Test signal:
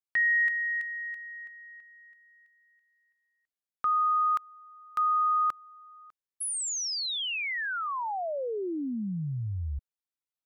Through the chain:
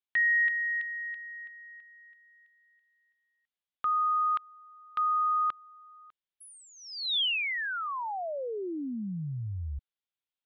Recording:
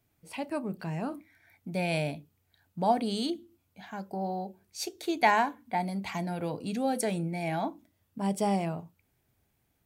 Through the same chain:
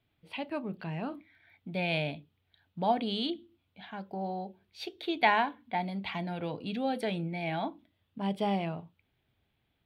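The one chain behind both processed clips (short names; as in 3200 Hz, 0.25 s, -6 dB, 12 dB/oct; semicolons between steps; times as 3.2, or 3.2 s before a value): resonant high shelf 4900 Hz -13 dB, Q 3; gain -2.5 dB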